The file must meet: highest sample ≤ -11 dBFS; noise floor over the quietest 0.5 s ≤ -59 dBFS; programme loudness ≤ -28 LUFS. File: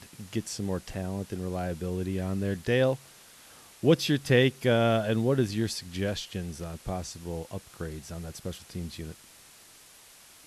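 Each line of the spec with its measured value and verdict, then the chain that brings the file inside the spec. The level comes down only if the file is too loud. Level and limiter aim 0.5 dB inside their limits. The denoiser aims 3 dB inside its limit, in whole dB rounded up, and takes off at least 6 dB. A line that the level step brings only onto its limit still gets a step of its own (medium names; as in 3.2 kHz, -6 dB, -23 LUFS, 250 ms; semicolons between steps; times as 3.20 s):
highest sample -9.5 dBFS: fail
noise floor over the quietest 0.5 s -54 dBFS: fail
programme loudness -29.5 LUFS: pass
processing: noise reduction 8 dB, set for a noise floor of -54 dBFS; peak limiter -11.5 dBFS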